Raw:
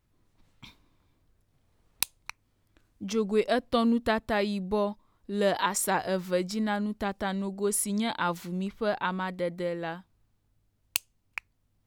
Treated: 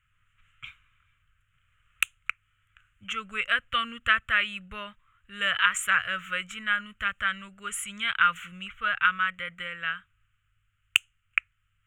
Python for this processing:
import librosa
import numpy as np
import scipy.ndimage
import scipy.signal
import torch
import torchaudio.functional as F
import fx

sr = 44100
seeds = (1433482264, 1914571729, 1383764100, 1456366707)

y = fx.curve_eq(x, sr, hz=(120.0, 320.0, 560.0, 870.0, 1300.0, 1900.0, 3000.0, 4800.0, 7000.0, 12000.0), db=(0, -26, -13, -20, 15, 11, 15, -27, 3, -9))
y = F.gain(torch.from_numpy(y), -1.5).numpy()